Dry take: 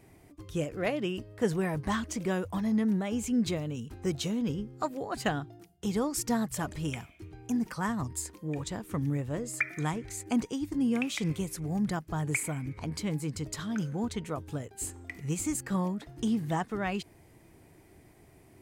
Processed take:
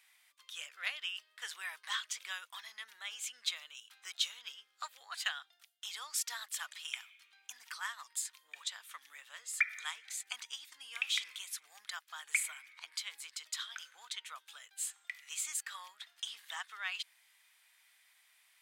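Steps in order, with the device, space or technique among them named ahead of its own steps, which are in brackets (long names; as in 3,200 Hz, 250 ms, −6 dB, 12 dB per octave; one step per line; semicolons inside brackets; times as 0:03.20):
headphones lying on a table (high-pass filter 1,300 Hz 24 dB per octave; parametric band 3,500 Hz +9.5 dB 0.58 octaves)
level −2 dB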